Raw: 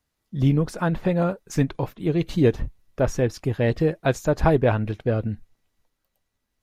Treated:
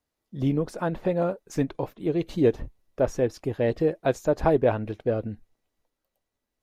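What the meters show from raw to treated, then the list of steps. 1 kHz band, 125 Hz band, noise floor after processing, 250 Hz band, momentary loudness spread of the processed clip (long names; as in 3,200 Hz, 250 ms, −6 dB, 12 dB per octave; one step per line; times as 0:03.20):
−2.5 dB, −8.0 dB, −84 dBFS, −3.5 dB, 8 LU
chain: drawn EQ curve 160 Hz 0 dB, 290 Hz +6 dB, 570 Hz +8 dB, 1,400 Hz +2 dB
level −8 dB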